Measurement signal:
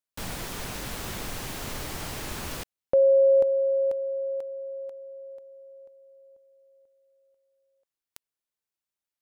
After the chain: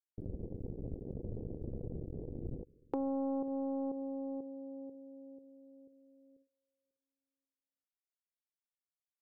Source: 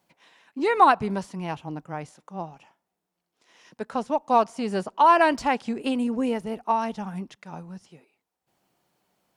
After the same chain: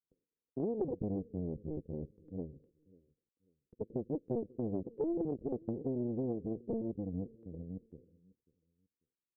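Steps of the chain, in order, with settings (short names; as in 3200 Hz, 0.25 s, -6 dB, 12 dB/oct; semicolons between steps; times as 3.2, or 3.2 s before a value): cycle switcher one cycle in 2, muted; Chebyshev low-pass 500 Hz, order 6; gate with hold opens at -59 dBFS, hold 40 ms, range -27 dB; compressor 5:1, threshold -32 dBFS; feedback echo 0.543 s, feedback 26%, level -23 dB; Doppler distortion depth 0.46 ms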